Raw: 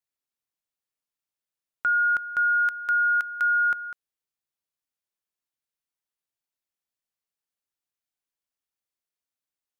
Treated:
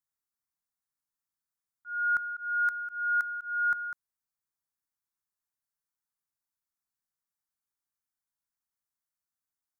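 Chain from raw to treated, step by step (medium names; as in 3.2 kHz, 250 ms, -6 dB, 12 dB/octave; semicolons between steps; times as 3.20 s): static phaser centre 1.2 kHz, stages 4; slow attack 402 ms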